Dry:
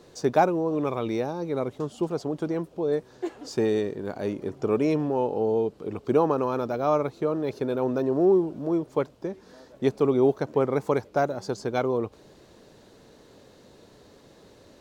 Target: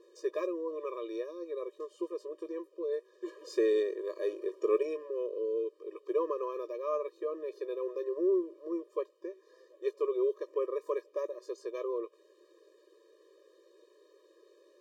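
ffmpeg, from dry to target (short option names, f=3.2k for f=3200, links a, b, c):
-filter_complex "[0:a]acrossover=split=310|2200[a][b][c];[a]acompressor=mode=upward:threshold=-42dB:ratio=2.5[d];[c]flanger=delay=16.5:depth=4.1:speed=0.14[e];[d][b][e]amix=inputs=3:normalize=0,asettb=1/sr,asplit=3[f][g][h];[f]atrim=end=3.284[i];[g]atrim=start=3.28:end=4.83,asetpts=PTS-STARTPTS,afade=t=in:d=0.004:c=qsin,afade=t=out:st=1.546:d=0.004:c=qsin,acontrast=57[j];[h]atrim=start=4.826[k];[i][j]acrossfade=d=0.004:c1=hsin:c2=qsin[l];[l][k]acrossfade=d=0.004:c1=qsin:c2=hsin,afftfilt=real='re*eq(mod(floor(b*sr/1024/320),2),1)':imag='im*eq(mod(floor(b*sr/1024/320),2),1)':win_size=1024:overlap=0.75,volume=-8dB"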